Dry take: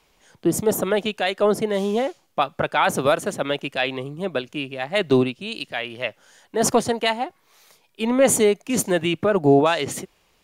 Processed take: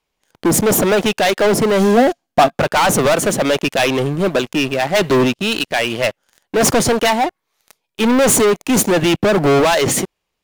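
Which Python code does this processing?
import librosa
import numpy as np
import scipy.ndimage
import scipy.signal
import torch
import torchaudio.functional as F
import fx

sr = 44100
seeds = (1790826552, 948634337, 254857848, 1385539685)

y = fx.leveller(x, sr, passes=5)
y = fx.small_body(y, sr, hz=(250.0, 690.0, 1600.0), ring_ms=45, db=fx.line((1.79, 8.0), (2.54, 12.0)), at=(1.79, 2.54), fade=0.02)
y = y * 10.0 ** (-3.5 / 20.0)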